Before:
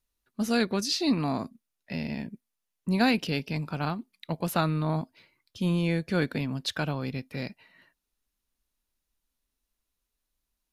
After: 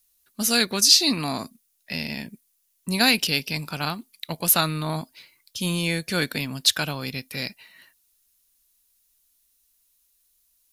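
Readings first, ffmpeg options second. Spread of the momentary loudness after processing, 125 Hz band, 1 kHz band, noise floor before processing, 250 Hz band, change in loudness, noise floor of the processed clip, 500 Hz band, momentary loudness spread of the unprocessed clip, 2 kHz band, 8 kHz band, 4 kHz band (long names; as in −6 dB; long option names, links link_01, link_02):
17 LU, −1.0 dB, +2.5 dB, −84 dBFS, −0.5 dB, +7.0 dB, −69 dBFS, +0.5 dB, 12 LU, +7.5 dB, +17.5 dB, +13.0 dB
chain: -af "crystalizer=i=8:c=0,volume=-1dB"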